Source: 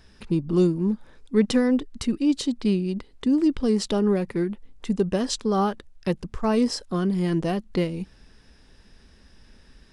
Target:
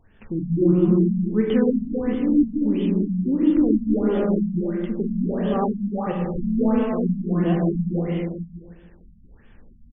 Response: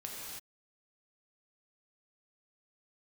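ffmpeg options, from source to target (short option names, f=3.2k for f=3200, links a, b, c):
-filter_complex "[0:a]asplit=2[a][b];[b]adelay=150,lowpass=f=2k:p=1,volume=-7dB,asplit=2[c][d];[d]adelay=150,lowpass=f=2k:p=1,volume=0.51,asplit=2[e][f];[f]adelay=150,lowpass=f=2k:p=1,volume=0.51,asplit=2[g][h];[h]adelay=150,lowpass=f=2k:p=1,volume=0.51,asplit=2[i][j];[j]adelay=150,lowpass=f=2k:p=1,volume=0.51,asplit=2[k][l];[l]adelay=150,lowpass=f=2k:p=1,volume=0.51[m];[a][c][e][g][i][k][m]amix=inputs=7:normalize=0[n];[1:a]atrim=start_sample=2205,asetrate=33075,aresample=44100[o];[n][o]afir=irnorm=-1:irlink=0,afftfilt=real='re*lt(b*sr/1024,230*pow(3600/230,0.5+0.5*sin(2*PI*1.5*pts/sr)))':imag='im*lt(b*sr/1024,230*pow(3600/230,0.5+0.5*sin(2*PI*1.5*pts/sr)))':win_size=1024:overlap=0.75"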